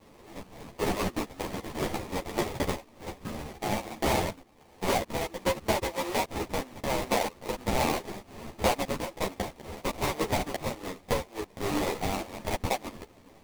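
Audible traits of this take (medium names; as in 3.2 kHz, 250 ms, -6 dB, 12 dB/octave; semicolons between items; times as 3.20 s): tremolo triangle 1.3 Hz, depth 55%; aliases and images of a low sample rate 1.5 kHz, jitter 20%; a shimmering, thickened sound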